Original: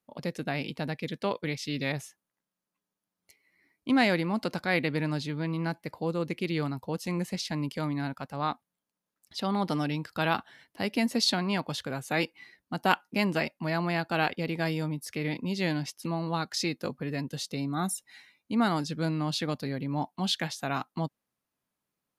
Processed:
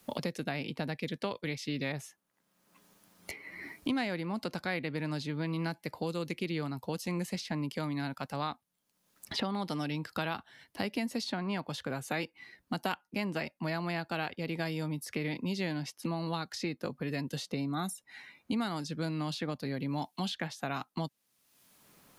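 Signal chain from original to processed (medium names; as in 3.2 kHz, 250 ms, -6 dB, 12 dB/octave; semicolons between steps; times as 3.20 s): three bands compressed up and down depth 100%; trim -5.5 dB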